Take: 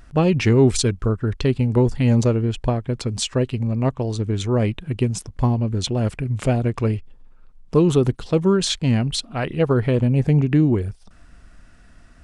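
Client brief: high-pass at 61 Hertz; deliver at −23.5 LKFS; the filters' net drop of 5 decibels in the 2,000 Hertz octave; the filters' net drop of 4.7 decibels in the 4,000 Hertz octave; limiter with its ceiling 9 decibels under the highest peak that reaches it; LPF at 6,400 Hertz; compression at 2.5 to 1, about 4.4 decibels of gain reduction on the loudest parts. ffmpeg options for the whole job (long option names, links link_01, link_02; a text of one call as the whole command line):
ffmpeg -i in.wav -af "highpass=61,lowpass=6400,equalizer=frequency=2000:width_type=o:gain=-5.5,equalizer=frequency=4000:width_type=o:gain=-3.5,acompressor=threshold=-18dB:ratio=2.5,volume=4.5dB,alimiter=limit=-14.5dB:level=0:latency=1" out.wav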